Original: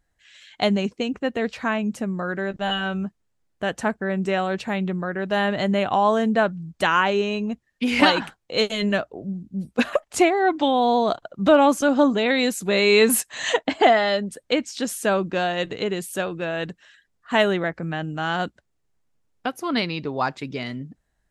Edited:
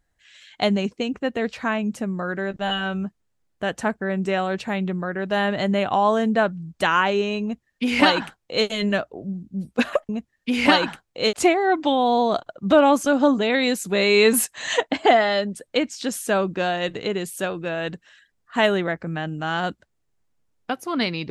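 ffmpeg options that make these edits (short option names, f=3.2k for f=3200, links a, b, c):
-filter_complex "[0:a]asplit=3[a][b][c];[a]atrim=end=10.092[d];[b]atrim=start=7.428:end=8.672[e];[c]atrim=start=10.088[f];[d][e]acrossfade=d=0.004:c1=hsin:c2=hsin[g];[g][f]acrossfade=d=0.004:c1=hsin:c2=hsin"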